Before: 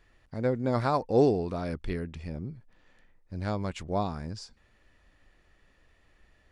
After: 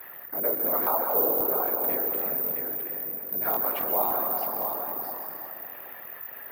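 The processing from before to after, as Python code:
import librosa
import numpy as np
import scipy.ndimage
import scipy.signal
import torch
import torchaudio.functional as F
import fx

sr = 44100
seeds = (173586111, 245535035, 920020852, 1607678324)

p1 = x + fx.echo_single(x, sr, ms=663, db=-11.0, dry=0)
p2 = fx.rider(p1, sr, range_db=4, speed_s=2.0)
p3 = scipy.signal.sosfilt(scipy.signal.butter(2, 4000.0, 'lowpass', fs=sr, output='sos'), p2)
p4 = fx.high_shelf(p3, sr, hz=2100.0, db=-9.0)
p5 = fx.rev_plate(p4, sr, seeds[0], rt60_s=2.1, hf_ratio=0.7, predelay_ms=115, drr_db=5.0)
p6 = (np.kron(p5[::3], np.eye(3)[0]) * 3)[:len(p5)]
p7 = fx.whisperise(p6, sr, seeds[1])
p8 = scipy.signal.sosfilt(scipy.signal.butter(2, 1000.0, 'highpass', fs=sr, output='sos'), p7)
p9 = fx.tilt_shelf(p8, sr, db=8.0, hz=1400.0)
p10 = fx.buffer_crackle(p9, sr, first_s=0.55, period_s=0.27, block=1024, kind='repeat')
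y = fx.env_flatten(p10, sr, amount_pct=50)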